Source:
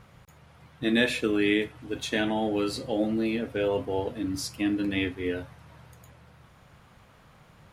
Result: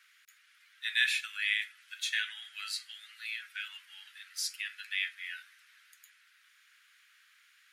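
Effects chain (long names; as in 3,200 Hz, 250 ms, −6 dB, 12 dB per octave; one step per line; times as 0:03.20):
Butterworth high-pass 1,500 Hz 48 dB per octave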